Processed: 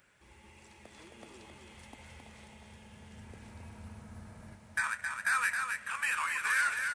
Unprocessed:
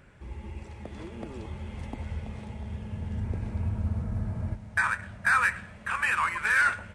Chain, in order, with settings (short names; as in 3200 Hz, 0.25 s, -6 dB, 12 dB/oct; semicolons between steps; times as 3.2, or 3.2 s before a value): tilt +3.5 dB/oct; on a send: echo 0.267 s -5 dB; on the sum: gain -9 dB